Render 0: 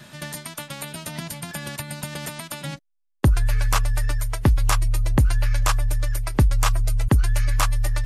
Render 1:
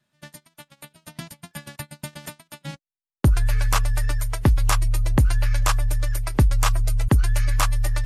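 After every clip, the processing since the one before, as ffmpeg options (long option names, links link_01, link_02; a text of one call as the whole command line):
ffmpeg -i in.wav -af "agate=range=-29dB:threshold=-30dB:ratio=16:detection=peak" out.wav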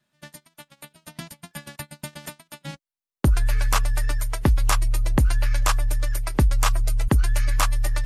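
ffmpeg -i in.wav -af "equalizer=frequency=110:width=2.3:gain=-5.5" out.wav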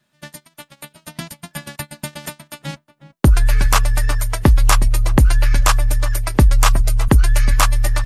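ffmpeg -i in.wav -filter_complex "[0:a]asplit=2[link_01][link_02];[link_02]adelay=364,lowpass=frequency=1300:poles=1,volume=-14.5dB,asplit=2[link_03][link_04];[link_04]adelay=364,lowpass=frequency=1300:poles=1,volume=0.21[link_05];[link_01][link_03][link_05]amix=inputs=3:normalize=0,volume=7dB" out.wav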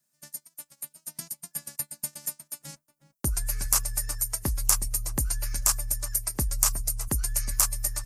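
ffmpeg -i in.wav -af "aexciter=amount=10.3:drive=1.9:freq=5000,volume=-18dB" out.wav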